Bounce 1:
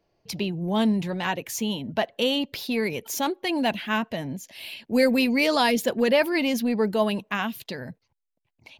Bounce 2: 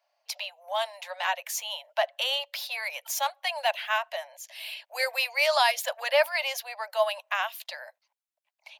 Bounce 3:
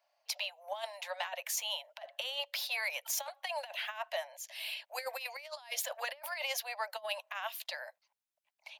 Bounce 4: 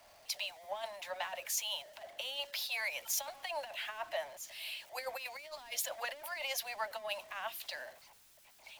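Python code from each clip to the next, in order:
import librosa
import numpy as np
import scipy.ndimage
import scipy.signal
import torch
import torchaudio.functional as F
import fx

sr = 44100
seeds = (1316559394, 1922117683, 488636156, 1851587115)

y1 = scipy.signal.sosfilt(scipy.signal.butter(16, 570.0, 'highpass', fs=sr, output='sos'), x)
y2 = fx.over_compress(y1, sr, threshold_db=-31.0, ratio=-0.5)
y2 = y2 * librosa.db_to_amplitude(-6.0)
y3 = y2 + 0.5 * 10.0 ** (-45.5 / 20.0) * np.sign(y2)
y3 = fx.band_widen(y3, sr, depth_pct=40)
y3 = y3 * librosa.db_to_amplitude(-3.0)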